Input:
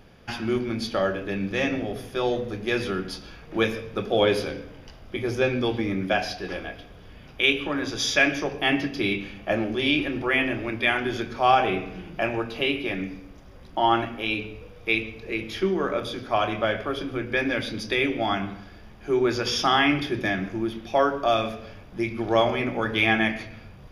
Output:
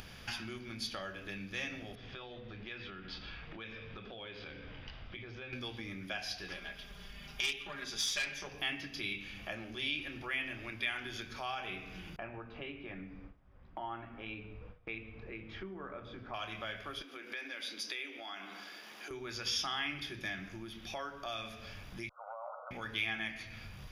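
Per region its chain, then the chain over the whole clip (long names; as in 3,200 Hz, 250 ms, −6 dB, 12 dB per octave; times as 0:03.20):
0:01.95–0:05.53: low-pass filter 3,700 Hz 24 dB per octave + downward compressor 3 to 1, threshold −38 dBFS
0:06.54–0:08.47: comb filter 5 ms, depth 82% + tube saturation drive 14 dB, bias 0.7
0:12.16–0:16.34: noise gate with hold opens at −33 dBFS, closes at −38 dBFS + low-pass filter 1,300 Hz
0:17.02–0:19.11: high-pass filter 280 Hz 24 dB per octave + downward compressor 2 to 1, threshold −40 dBFS
0:22.09–0:22.71: compressor whose output falls as the input rises −24 dBFS + linear-phase brick-wall band-pass 490–1,500 Hz
whole clip: downward compressor 2.5 to 1, threshold −40 dBFS; guitar amp tone stack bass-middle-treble 5-5-5; upward compression, threshold −54 dBFS; level +10.5 dB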